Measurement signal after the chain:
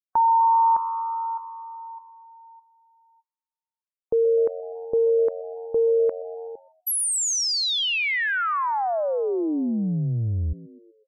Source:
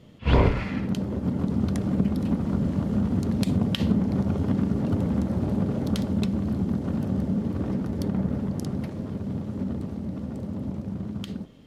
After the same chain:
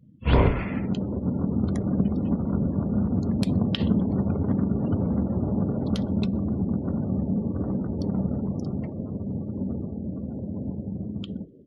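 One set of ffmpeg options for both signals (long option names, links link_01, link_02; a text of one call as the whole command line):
ffmpeg -i in.wav -filter_complex "[0:a]asplit=6[link_01][link_02][link_03][link_04][link_05][link_06];[link_02]adelay=125,afreqshift=89,volume=-19dB[link_07];[link_03]adelay=250,afreqshift=178,volume=-23.9dB[link_08];[link_04]adelay=375,afreqshift=267,volume=-28.8dB[link_09];[link_05]adelay=500,afreqshift=356,volume=-33.6dB[link_10];[link_06]adelay=625,afreqshift=445,volume=-38.5dB[link_11];[link_01][link_07][link_08][link_09][link_10][link_11]amix=inputs=6:normalize=0,afftdn=noise_reduction=32:noise_floor=-42" out.wav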